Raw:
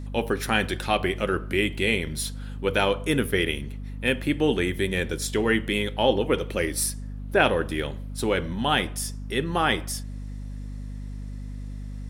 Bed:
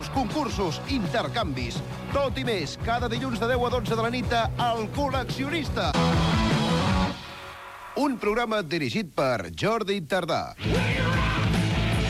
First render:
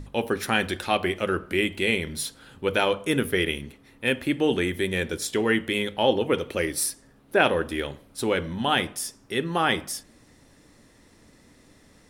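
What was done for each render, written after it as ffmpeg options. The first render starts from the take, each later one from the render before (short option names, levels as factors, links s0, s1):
-af "bandreject=f=50:t=h:w=6,bandreject=f=100:t=h:w=6,bandreject=f=150:t=h:w=6,bandreject=f=200:t=h:w=6,bandreject=f=250:t=h:w=6"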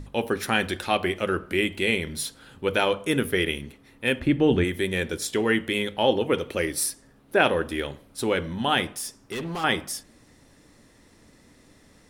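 -filter_complex "[0:a]asplit=3[s0][s1][s2];[s0]afade=t=out:st=4.19:d=0.02[s3];[s1]aemphasis=mode=reproduction:type=bsi,afade=t=in:st=4.19:d=0.02,afade=t=out:st=4.63:d=0.02[s4];[s2]afade=t=in:st=4.63:d=0.02[s5];[s3][s4][s5]amix=inputs=3:normalize=0,asettb=1/sr,asplit=3[s6][s7][s8];[s6]atrim=end=8.924[s9];[s7]atrim=start=8.92:end=9.64,asetpts=PTS-STARTPTS,afade=t=in:d=0.004:c=qsin,afade=t=out:st=0.716:d=0.004:c=qsin,asoftclip=type=hard:threshold=0.0376[s10];[s8]atrim=start=9.636[s11];[s9][s10]acrossfade=d=0.004:c1=hsin:c2=qsin[s12];[s12][s11]acrossfade=d=0.004:c1=qsin:c2=hsin"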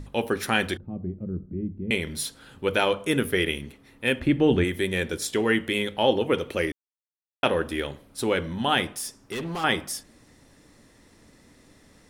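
-filter_complex "[0:a]asettb=1/sr,asplit=3[s0][s1][s2];[s0]atrim=end=0.774[s3];[s1]atrim=start=0.77:end=1.91,asetpts=PTS-STARTPTS,afade=t=in:d=0.004:c=qsin,afade=t=out:st=1.136:d=0.004:c=qsin,lowpass=f=180:t=q:w=1.6[s4];[s2]atrim=start=1.906[s5];[s3][s4]acrossfade=d=0.004:c1=hsin:c2=qsin[s6];[s6][s5]acrossfade=d=0.004:c1=qsin:c2=hsin,asplit=3[s7][s8][s9];[s7]atrim=end=6.72,asetpts=PTS-STARTPTS,afade=t=out:st=6.716:d=0.004:c=hsin[s10];[s8]atrim=start=6.72:end=7.43,asetpts=PTS-STARTPTS,volume=0[s11];[s9]atrim=start=7.43,asetpts=PTS-STARTPTS,afade=t=in:d=0.004:c=hsin[s12];[s10][s11][s12]concat=n=3:v=0:a=1"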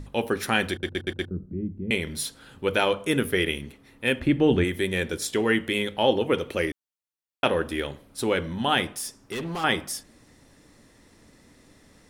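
-filter_complex "[0:a]asplit=6[s0][s1][s2][s3][s4][s5];[s0]atrim=end=0.832[s6];[s1]atrim=start=0.708:end=0.832[s7];[s2]atrim=start=0.708:end=0.832[s8];[s3]atrim=start=0.708:end=0.832[s9];[s4]atrim=start=0.708:end=0.832[s10];[s5]atrim=start=1.308[s11];[s6][s7]acrossfade=d=0.004:c1=hsin:c2=hsin[s12];[s12][s8]acrossfade=d=0.004:c1=hsin:c2=hsin[s13];[s13][s9]acrossfade=d=0.004:c1=hsin:c2=hsin[s14];[s14][s10]acrossfade=d=0.004:c1=hsin:c2=hsin[s15];[s15][s11]acrossfade=d=0.004:c1=hsin:c2=hsin"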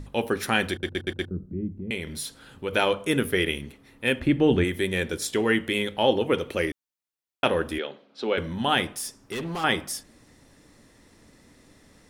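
-filter_complex "[0:a]asettb=1/sr,asplit=3[s0][s1][s2];[s0]atrim=end=1.694[s3];[s1]atrim=start=1.69:end=2.73,asetpts=PTS-STARTPTS,afade=t=in:d=0.004:c=qsin,afade=t=out:st=1.036:d=0.004:c=qsin,acompressor=threshold=0.02:ratio=1.5:attack=3.2:release=140:knee=1:detection=peak[s4];[s2]atrim=start=2.726[s5];[s3][s4]acrossfade=d=0.004:c1=hsin:c2=qsin[s6];[s6][s5]acrossfade=d=0.004:c1=qsin:c2=hsin,asettb=1/sr,asplit=3[s7][s8][s9];[s7]atrim=end=7.784[s10];[s8]atrim=start=7.78:end=8.38,asetpts=PTS-STARTPTS,afade=t=in:d=0.004:c=qsin,afade=t=out:st=0.596:d=0.004:c=qsin,highpass=f=220:w=0.5412,highpass=f=220:w=1.3066,equalizer=f=300:t=q:w=4:g=-7,equalizer=f=1000:t=q:w=4:g=-4,equalizer=f=1900:t=q:w=4:g=-5,lowpass=f=4500:w=0.5412,lowpass=f=4500:w=1.3066[s11];[s9]atrim=start=8.376[s12];[s10][s11]acrossfade=d=0.004:c1=hsin:c2=qsin[s13];[s13][s12]acrossfade=d=0.004:c1=qsin:c2=hsin"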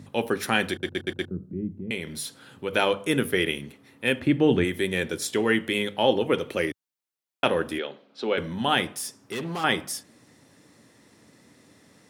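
-af "highpass=f=100:w=0.5412,highpass=f=100:w=1.3066"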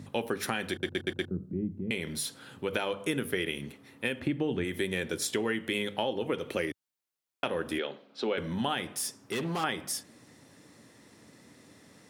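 -af "alimiter=limit=0.299:level=0:latency=1:release=299,acompressor=threshold=0.0447:ratio=6"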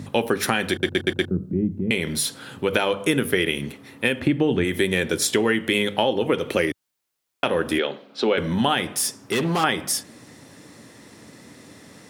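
-af "volume=3.16,alimiter=limit=0.708:level=0:latency=1"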